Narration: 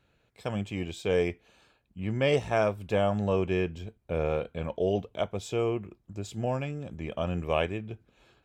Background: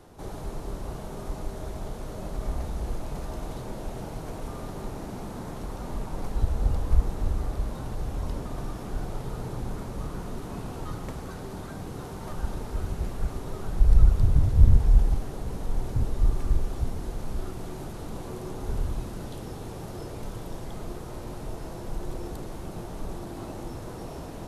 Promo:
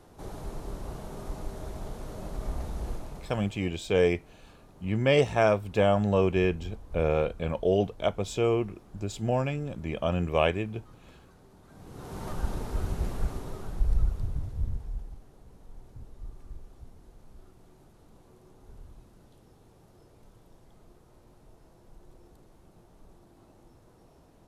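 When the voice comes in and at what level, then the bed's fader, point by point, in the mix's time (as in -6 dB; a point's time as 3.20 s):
2.85 s, +3.0 dB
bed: 2.90 s -3 dB
3.72 s -18.5 dB
11.61 s -18.5 dB
12.18 s 0 dB
13.17 s 0 dB
15.13 s -20 dB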